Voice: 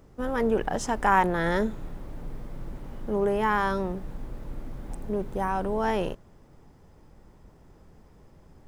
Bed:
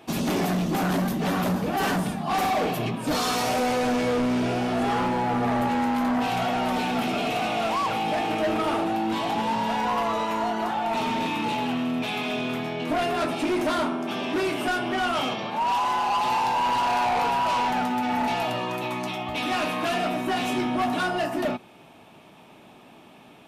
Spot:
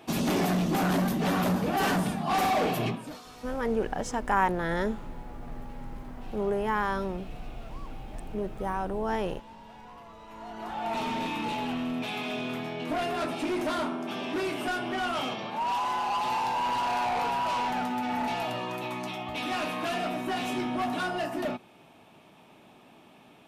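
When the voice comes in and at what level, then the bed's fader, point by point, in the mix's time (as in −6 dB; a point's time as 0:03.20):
3.25 s, −3.5 dB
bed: 0:02.90 −1.5 dB
0:03.22 −23.5 dB
0:10.18 −23.5 dB
0:10.87 −5 dB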